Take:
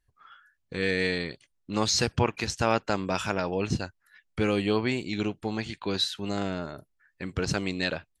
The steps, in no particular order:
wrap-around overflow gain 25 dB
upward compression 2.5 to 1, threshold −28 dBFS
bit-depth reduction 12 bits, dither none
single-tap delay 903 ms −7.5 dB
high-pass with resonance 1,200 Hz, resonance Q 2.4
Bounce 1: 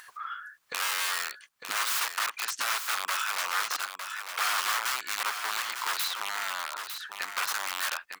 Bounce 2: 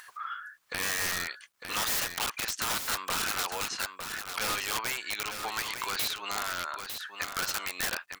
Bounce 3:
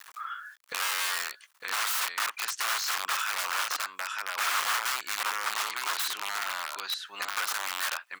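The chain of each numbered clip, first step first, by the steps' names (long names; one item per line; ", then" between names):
wrap-around overflow, then high-pass with resonance, then upward compression, then bit-depth reduction, then single-tap delay
high-pass with resonance, then wrap-around overflow, then upward compression, then single-tap delay, then bit-depth reduction
single-tap delay, then wrap-around overflow, then bit-depth reduction, then high-pass with resonance, then upward compression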